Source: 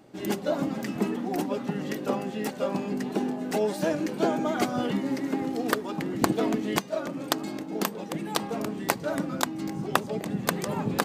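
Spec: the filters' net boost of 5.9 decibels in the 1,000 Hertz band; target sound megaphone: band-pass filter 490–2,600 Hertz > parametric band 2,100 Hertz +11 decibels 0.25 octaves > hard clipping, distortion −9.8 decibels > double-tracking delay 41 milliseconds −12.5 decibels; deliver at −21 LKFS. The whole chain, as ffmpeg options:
ffmpeg -i in.wav -filter_complex "[0:a]highpass=490,lowpass=2600,equalizer=frequency=1000:width_type=o:gain=8,equalizer=frequency=2100:width_type=o:width=0.25:gain=11,asoftclip=type=hard:threshold=-14dB,asplit=2[link_01][link_02];[link_02]adelay=41,volume=-12.5dB[link_03];[link_01][link_03]amix=inputs=2:normalize=0,volume=9dB" out.wav

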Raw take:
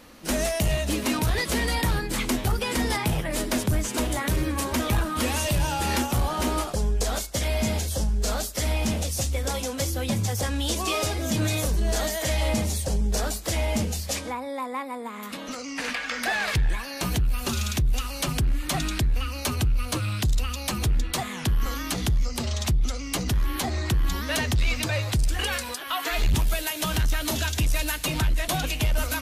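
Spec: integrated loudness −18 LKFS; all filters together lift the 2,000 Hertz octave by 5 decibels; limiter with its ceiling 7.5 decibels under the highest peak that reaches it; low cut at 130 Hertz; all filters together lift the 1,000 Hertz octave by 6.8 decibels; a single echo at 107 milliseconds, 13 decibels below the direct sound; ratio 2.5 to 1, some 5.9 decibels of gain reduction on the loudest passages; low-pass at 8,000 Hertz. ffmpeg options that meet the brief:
ffmpeg -i in.wav -af "highpass=130,lowpass=8000,equalizer=frequency=1000:width_type=o:gain=7.5,equalizer=frequency=2000:width_type=o:gain=4,acompressor=threshold=-27dB:ratio=2.5,alimiter=limit=-22dB:level=0:latency=1,aecho=1:1:107:0.224,volume=13dB" out.wav

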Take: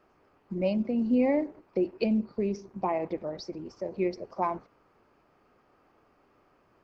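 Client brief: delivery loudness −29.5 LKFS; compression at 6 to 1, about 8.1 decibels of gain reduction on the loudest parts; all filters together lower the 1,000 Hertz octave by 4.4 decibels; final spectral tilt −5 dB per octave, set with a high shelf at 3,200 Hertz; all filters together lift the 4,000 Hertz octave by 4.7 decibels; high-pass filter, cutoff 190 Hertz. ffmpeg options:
ffmpeg -i in.wav -af "highpass=190,equalizer=frequency=1000:width_type=o:gain=-6,highshelf=frequency=3200:gain=3,equalizer=frequency=4000:width_type=o:gain=4,acompressor=threshold=-30dB:ratio=6,volume=7dB" out.wav

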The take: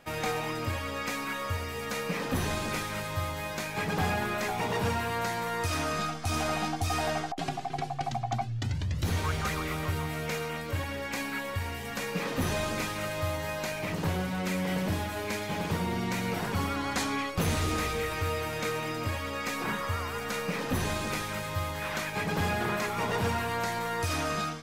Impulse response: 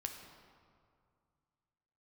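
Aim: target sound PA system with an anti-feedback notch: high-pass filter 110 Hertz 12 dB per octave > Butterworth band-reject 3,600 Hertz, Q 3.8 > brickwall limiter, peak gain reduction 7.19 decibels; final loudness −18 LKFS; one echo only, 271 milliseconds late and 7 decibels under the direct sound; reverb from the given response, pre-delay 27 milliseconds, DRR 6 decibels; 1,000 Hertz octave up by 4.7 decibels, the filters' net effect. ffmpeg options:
-filter_complex "[0:a]equalizer=frequency=1000:width_type=o:gain=6,aecho=1:1:271:0.447,asplit=2[link_01][link_02];[1:a]atrim=start_sample=2205,adelay=27[link_03];[link_02][link_03]afir=irnorm=-1:irlink=0,volume=-4.5dB[link_04];[link_01][link_04]amix=inputs=2:normalize=0,highpass=110,asuperstop=centerf=3600:order=8:qfactor=3.8,volume=12dB,alimiter=limit=-9dB:level=0:latency=1"

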